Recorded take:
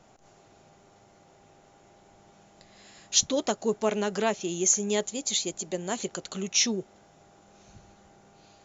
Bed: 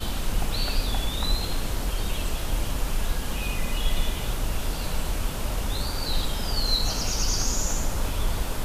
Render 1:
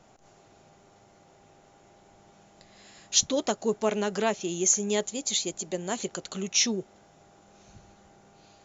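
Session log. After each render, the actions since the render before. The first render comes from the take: no audible change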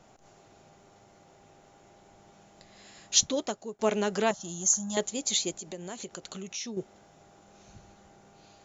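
3.18–3.79 s: fade out, to -21 dB; 4.31–4.97 s: static phaser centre 1 kHz, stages 4; 5.56–6.77 s: compression 3:1, threshold -38 dBFS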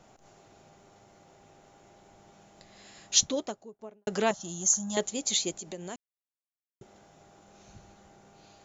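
3.18–4.07 s: studio fade out; 5.96–6.81 s: mute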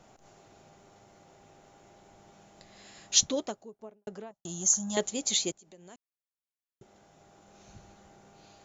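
3.64–4.45 s: studio fade out; 5.52–7.74 s: fade in linear, from -18 dB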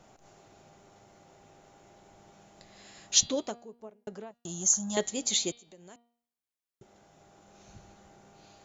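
de-hum 236.7 Hz, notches 20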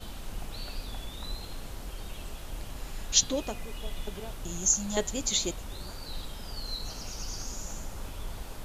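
add bed -12.5 dB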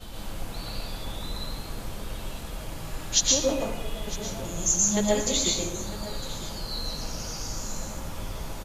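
delay 955 ms -16.5 dB; plate-style reverb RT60 0.81 s, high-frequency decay 0.55×, pre-delay 105 ms, DRR -4 dB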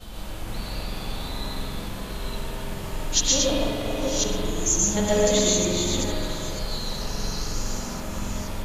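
chunks repeated in reverse 471 ms, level -3.5 dB; spring tank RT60 2.2 s, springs 45 ms, chirp 50 ms, DRR -0.5 dB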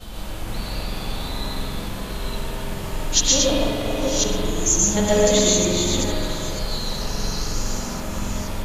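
trim +3.5 dB

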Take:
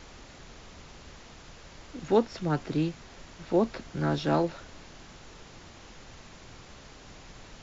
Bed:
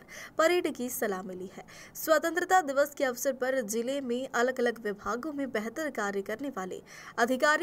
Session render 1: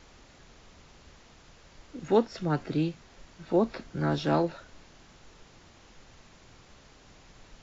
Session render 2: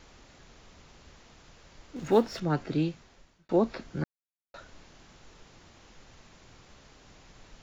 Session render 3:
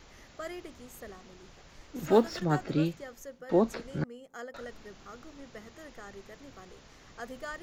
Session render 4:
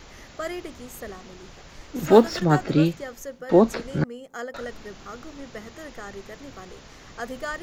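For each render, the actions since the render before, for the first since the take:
noise print and reduce 6 dB
1.96–2.40 s: companding laws mixed up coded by mu; 2.90–3.49 s: fade out; 4.04–4.54 s: mute
add bed -15.5 dB
trim +8.5 dB

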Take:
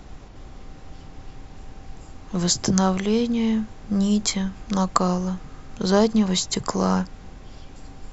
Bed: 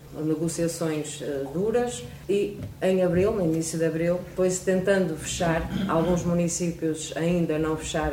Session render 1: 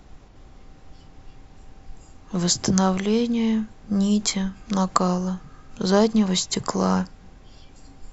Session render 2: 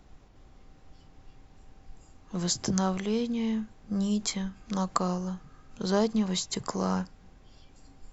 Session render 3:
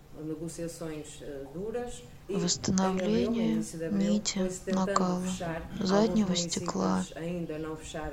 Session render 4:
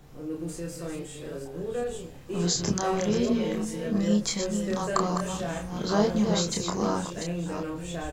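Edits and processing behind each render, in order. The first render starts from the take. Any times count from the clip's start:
noise print and reduce 6 dB
trim -7.5 dB
add bed -11 dB
chunks repeated in reverse 362 ms, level -6.5 dB; doubling 29 ms -3 dB

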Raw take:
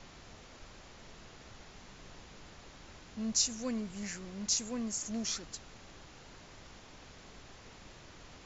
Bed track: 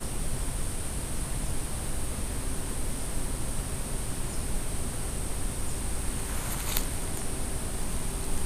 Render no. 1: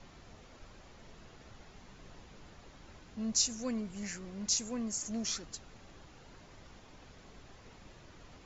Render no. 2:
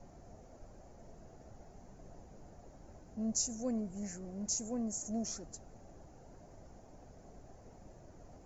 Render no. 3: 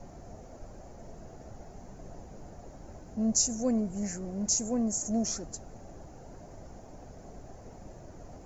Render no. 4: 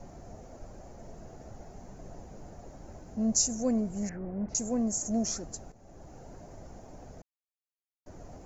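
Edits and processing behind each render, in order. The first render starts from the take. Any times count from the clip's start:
noise reduction 6 dB, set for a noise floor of -55 dBFS
FFT filter 470 Hz 0 dB, 690 Hz +5 dB, 1.1 kHz -10 dB, 1.6 kHz -10 dB, 3.5 kHz -21 dB, 6.4 kHz -3 dB
trim +8 dB
4.09–4.55 s: low-pass 2.2 kHz 24 dB/octave; 5.72–6.14 s: fade in linear, from -13 dB; 7.22–8.06 s: mute

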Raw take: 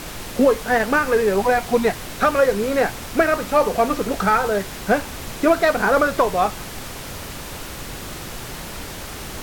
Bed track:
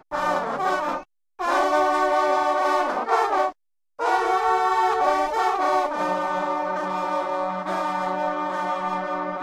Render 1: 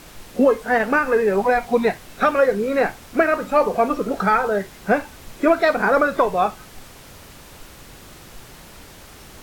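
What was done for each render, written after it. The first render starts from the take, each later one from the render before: noise print and reduce 10 dB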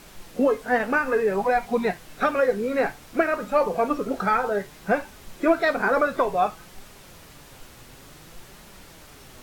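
flange 0.58 Hz, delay 4.7 ms, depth 3.8 ms, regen +61%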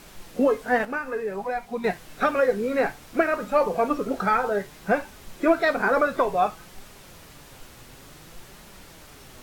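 0.85–1.84 s: gain -7 dB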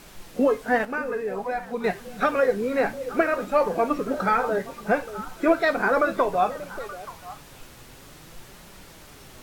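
repeats whose band climbs or falls 292 ms, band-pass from 160 Hz, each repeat 1.4 oct, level -8 dB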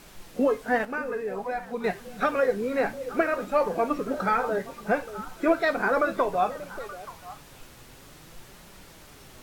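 trim -2.5 dB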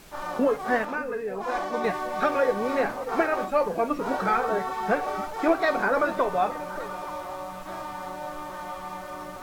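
add bed track -10.5 dB

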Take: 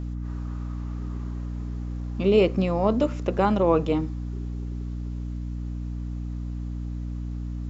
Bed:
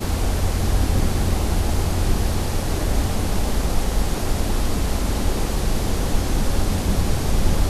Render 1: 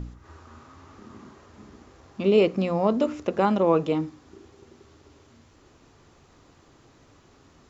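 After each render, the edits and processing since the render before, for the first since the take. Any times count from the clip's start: de-hum 60 Hz, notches 5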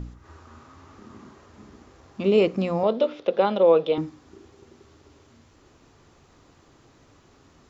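2.83–3.98 s: cabinet simulation 250–4700 Hz, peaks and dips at 280 Hz -8 dB, 520 Hz +8 dB, 1.1 kHz -4 dB, 1.8 kHz -3 dB, 3.5 kHz +10 dB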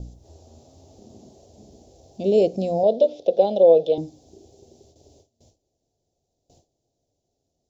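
gate with hold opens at -44 dBFS; FFT filter 120 Hz 0 dB, 290 Hz -3 dB, 700 Hz +7 dB, 1.2 kHz -30 dB, 1.9 kHz -24 dB, 3.5 kHz -2 dB, 5.6 kHz +5 dB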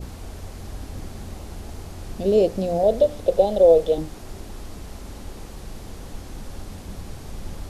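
add bed -15.5 dB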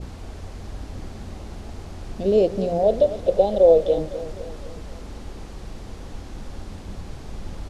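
distance through air 55 m; feedback delay 254 ms, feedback 51%, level -14 dB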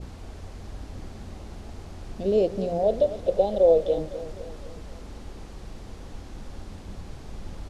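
trim -4 dB

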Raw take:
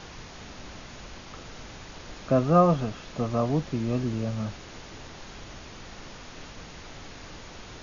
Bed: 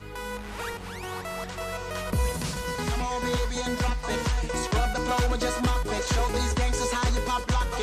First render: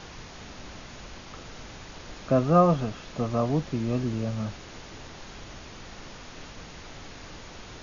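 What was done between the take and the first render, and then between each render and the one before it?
no audible change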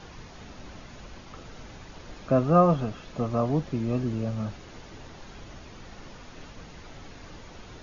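noise reduction 6 dB, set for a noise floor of -45 dBFS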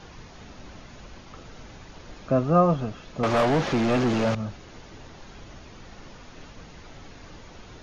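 3.23–4.35 s: overdrive pedal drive 28 dB, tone 3.5 kHz, clips at -14.5 dBFS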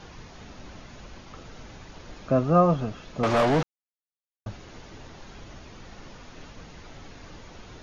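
3.63–4.46 s: mute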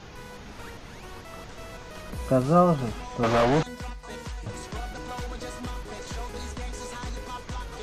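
add bed -10.5 dB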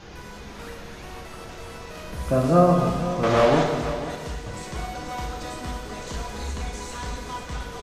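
delay 494 ms -12.5 dB; gated-style reverb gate 450 ms falling, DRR -0.5 dB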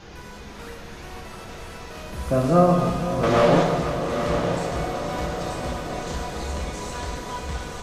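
echo that smears into a reverb 922 ms, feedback 55%, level -6 dB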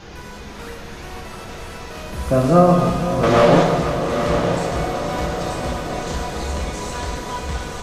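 trim +4.5 dB; peak limiter -2 dBFS, peak gain reduction 1.5 dB

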